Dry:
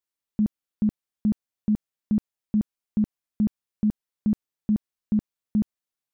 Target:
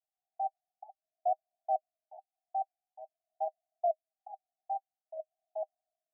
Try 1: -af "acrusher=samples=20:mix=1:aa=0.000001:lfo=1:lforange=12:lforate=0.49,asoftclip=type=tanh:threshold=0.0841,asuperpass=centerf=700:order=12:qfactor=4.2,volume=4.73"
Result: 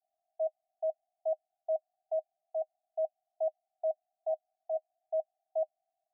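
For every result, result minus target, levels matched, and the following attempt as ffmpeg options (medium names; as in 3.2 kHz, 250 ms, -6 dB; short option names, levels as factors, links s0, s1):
decimation with a swept rate: distortion -13 dB; saturation: distortion -6 dB
-af "acrusher=samples=60:mix=1:aa=0.000001:lfo=1:lforange=36:lforate=0.49,asoftclip=type=tanh:threshold=0.0841,asuperpass=centerf=700:order=12:qfactor=4.2,volume=4.73"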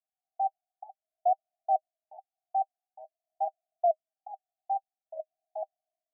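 saturation: distortion -6 dB
-af "acrusher=samples=60:mix=1:aa=0.000001:lfo=1:lforange=36:lforate=0.49,asoftclip=type=tanh:threshold=0.0398,asuperpass=centerf=700:order=12:qfactor=4.2,volume=4.73"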